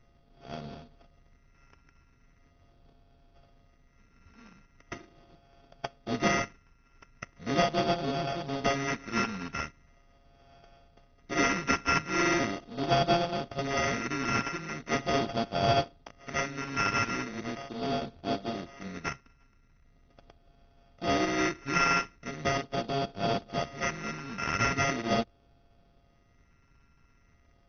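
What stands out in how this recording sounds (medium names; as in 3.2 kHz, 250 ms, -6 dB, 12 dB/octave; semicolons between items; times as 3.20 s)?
a buzz of ramps at a fixed pitch in blocks of 64 samples; phasing stages 4, 0.4 Hz, lowest notch 640–2000 Hz; aliases and images of a low sample rate 4 kHz, jitter 0%; AC-3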